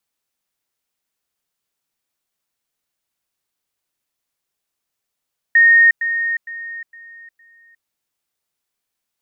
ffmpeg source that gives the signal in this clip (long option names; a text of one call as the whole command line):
ffmpeg -f lavfi -i "aevalsrc='pow(10,(-7-10*floor(t/0.46))/20)*sin(2*PI*1850*t)*clip(min(mod(t,0.46),0.36-mod(t,0.46))/0.005,0,1)':duration=2.3:sample_rate=44100" out.wav